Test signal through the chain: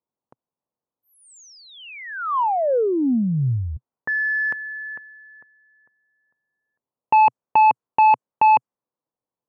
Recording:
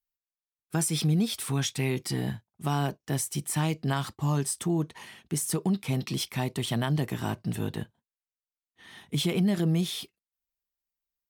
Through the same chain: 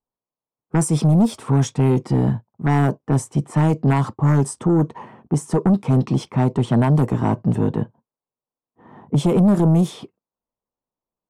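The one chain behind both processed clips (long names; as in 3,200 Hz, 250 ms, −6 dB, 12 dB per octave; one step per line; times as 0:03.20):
low-pass that shuts in the quiet parts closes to 1,100 Hz, open at −21.5 dBFS
octave-band graphic EQ 125/250/500/1,000/2,000/4,000/8,000 Hz +11/+10/+10/+12/−4/−7/+6 dB
sine wavefolder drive 6 dB, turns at −2 dBFS
level −9 dB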